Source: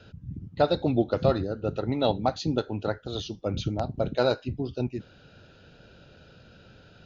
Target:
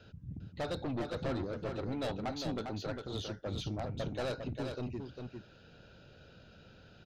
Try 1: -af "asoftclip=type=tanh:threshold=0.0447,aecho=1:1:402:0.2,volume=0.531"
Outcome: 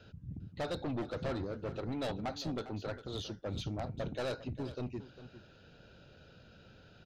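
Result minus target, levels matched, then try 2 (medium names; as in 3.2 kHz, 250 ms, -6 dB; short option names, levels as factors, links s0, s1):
echo-to-direct -8.5 dB
-af "asoftclip=type=tanh:threshold=0.0447,aecho=1:1:402:0.531,volume=0.531"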